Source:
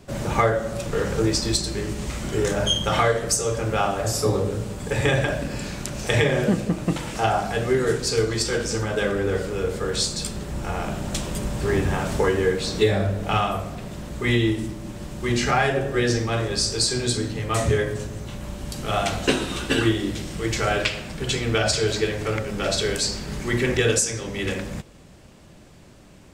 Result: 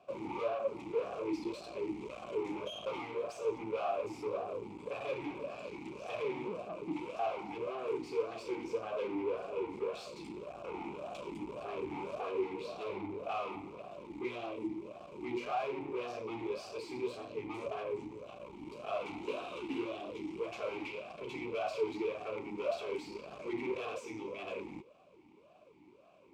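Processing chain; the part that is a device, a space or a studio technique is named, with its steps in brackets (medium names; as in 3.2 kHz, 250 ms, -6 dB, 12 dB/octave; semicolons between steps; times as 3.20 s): talk box (valve stage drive 30 dB, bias 0.8; talking filter a-u 1.8 Hz); trim +5.5 dB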